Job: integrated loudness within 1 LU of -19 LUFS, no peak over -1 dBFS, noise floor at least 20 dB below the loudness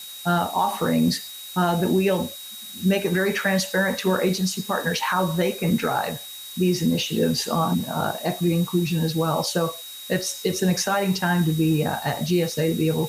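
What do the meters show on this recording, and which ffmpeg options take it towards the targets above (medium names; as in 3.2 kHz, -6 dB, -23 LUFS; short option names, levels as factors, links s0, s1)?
steady tone 3.8 kHz; tone level -38 dBFS; noise floor -38 dBFS; noise floor target -43 dBFS; loudness -23.0 LUFS; peak level -11.0 dBFS; loudness target -19.0 LUFS
-> -af "bandreject=f=3800:w=30"
-af "afftdn=nr=6:nf=-38"
-af "volume=1.58"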